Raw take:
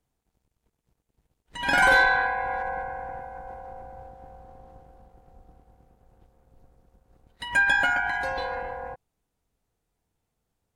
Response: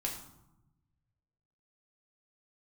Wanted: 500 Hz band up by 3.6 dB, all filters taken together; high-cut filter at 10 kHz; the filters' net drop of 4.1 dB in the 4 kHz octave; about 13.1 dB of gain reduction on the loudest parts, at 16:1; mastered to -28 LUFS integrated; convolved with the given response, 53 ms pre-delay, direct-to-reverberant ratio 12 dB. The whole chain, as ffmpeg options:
-filter_complex "[0:a]lowpass=10000,equalizer=f=500:t=o:g=4,equalizer=f=4000:t=o:g=-5.5,acompressor=threshold=0.0447:ratio=16,asplit=2[s0][s1];[1:a]atrim=start_sample=2205,adelay=53[s2];[s1][s2]afir=irnorm=-1:irlink=0,volume=0.2[s3];[s0][s3]amix=inputs=2:normalize=0,volume=1.68"

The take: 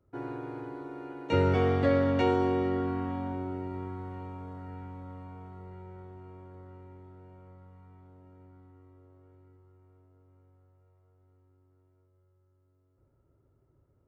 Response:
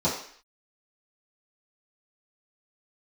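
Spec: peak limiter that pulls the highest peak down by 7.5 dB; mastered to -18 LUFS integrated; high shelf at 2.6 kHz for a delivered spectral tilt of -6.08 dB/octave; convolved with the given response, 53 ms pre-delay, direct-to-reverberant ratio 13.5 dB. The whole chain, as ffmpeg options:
-filter_complex "[0:a]highshelf=f=2600:g=6,alimiter=limit=0.0841:level=0:latency=1,asplit=2[s0][s1];[1:a]atrim=start_sample=2205,adelay=53[s2];[s1][s2]afir=irnorm=-1:irlink=0,volume=0.0501[s3];[s0][s3]amix=inputs=2:normalize=0,volume=5.62"

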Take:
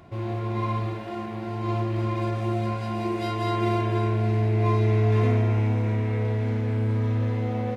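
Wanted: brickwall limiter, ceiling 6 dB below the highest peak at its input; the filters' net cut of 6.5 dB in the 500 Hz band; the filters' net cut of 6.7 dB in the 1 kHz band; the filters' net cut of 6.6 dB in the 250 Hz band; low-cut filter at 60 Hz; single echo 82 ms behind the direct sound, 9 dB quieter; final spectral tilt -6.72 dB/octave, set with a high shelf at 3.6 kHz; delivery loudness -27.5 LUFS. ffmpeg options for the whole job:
-af "highpass=60,equalizer=f=250:t=o:g=-7,equalizer=f=500:t=o:g=-4.5,equalizer=f=1000:t=o:g=-7,highshelf=f=3600:g=6,alimiter=limit=0.0841:level=0:latency=1,aecho=1:1:82:0.355,volume=1.06"

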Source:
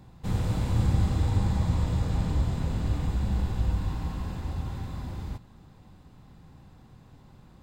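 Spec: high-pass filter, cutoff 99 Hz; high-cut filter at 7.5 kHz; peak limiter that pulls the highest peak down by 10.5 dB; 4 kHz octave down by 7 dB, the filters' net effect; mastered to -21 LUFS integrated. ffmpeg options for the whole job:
-af "highpass=99,lowpass=7500,equalizer=f=4000:t=o:g=-8.5,volume=5.96,alimiter=limit=0.266:level=0:latency=1"

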